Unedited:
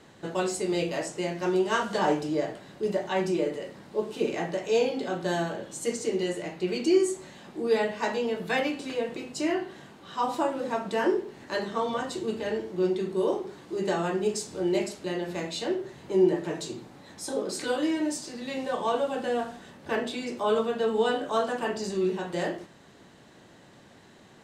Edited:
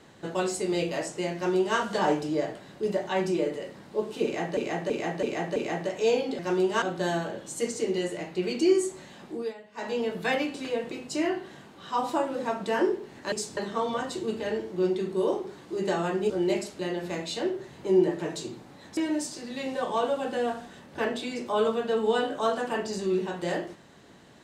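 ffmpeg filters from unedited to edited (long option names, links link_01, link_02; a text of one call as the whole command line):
ffmpeg -i in.wav -filter_complex "[0:a]asplit=13[link_01][link_02][link_03][link_04][link_05][link_06][link_07][link_08][link_09][link_10][link_11][link_12][link_13];[link_01]atrim=end=4.572[link_14];[link_02]atrim=start=4.238:end=4.572[link_15];[link_03]atrim=start=4.238:end=4.572[link_16];[link_04]atrim=start=4.238:end=4.572[link_17];[link_05]atrim=start=4.238:end=5.072[link_18];[link_06]atrim=start=1.348:end=1.782[link_19];[link_07]atrim=start=5.068:end=7.79,asetpts=PTS-STARTPTS,afade=type=out:start_time=2.472:duration=0.25:silence=0.105925[link_20];[link_08]atrim=start=7.79:end=7.97,asetpts=PTS-STARTPTS,volume=-19.5dB[link_21];[link_09]atrim=start=7.97:end=11.572,asetpts=PTS-STARTPTS,afade=type=in:duration=0.25:silence=0.105925[link_22];[link_10]atrim=start=14.298:end=14.552[link_23];[link_11]atrim=start=11.568:end=14.302[link_24];[link_12]atrim=start=14.548:end=17.222[link_25];[link_13]atrim=start=17.878[link_26];[link_14][link_15]acrossfade=duration=0.004:curve1=hsin:curve2=hsin[link_27];[link_27][link_16]acrossfade=duration=0.004:curve1=hsin:curve2=hsin[link_28];[link_28][link_17]acrossfade=duration=0.004:curve1=hsin:curve2=hsin[link_29];[link_29][link_18]acrossfade=duration=0.004:curve1=hsin:curve2=hsin[link_30];[link_30][link_19]acrossfade=duration=0.004:curve1=hsin:curve2=hsin[link_31];[link_20][link_21][link_22]concat=n=3:v=0:a=1[link_32];[link_31][link_32]acrossfade=duration=0.004:curve1=hsin:curve2=hsin[link_33];[link_33][link_23]acrossfade=duration=0.004:curve1=hsin:curve2=hsin[link_34];[link_34][link_24]acrossfade=duration=0.004:curve1=hsin:curve2=hsin[link_35];[link_35][link_25]acrossfade=duration=0.004:curve1=hsin:curve2=hsin[link_36];[link_36][link_26]acrossfade=duration=0.004:curve1=hsin:curve2=hsin" out.wav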